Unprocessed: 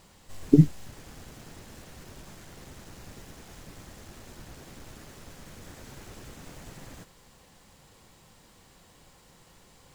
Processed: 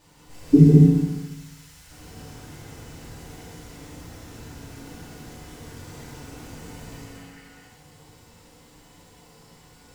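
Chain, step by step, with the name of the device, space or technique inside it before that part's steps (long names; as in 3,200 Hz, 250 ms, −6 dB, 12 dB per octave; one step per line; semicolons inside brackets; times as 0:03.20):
0:01.00–0:01.90: guitar amp tone stack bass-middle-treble 10-0-10
0:06.62–0:07.46: healed spectral selection 1,200–3,200 Hz before
bathroom (convolution reverb RT60 0.95 s, pre-delay 113 ms, DRR −0.5 dB)
feedback delay network reverb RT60 0.83 s, low-frequency decay 1.2×, high-frequency decay 0.85×, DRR −6.5 dB
level −6 dB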